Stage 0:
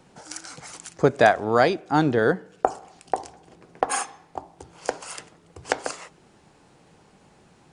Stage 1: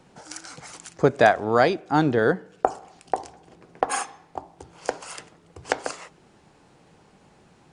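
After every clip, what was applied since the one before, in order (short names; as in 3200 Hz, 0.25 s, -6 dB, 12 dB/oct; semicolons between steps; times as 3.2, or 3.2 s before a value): high shelf 7800 Hz -4.5 dB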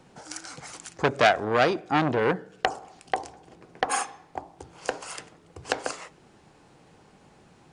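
on a send at -17 dB: reverb RT60 0.45 s, pre-delay 3 ms; on the sum: core saturation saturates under 2300 Hz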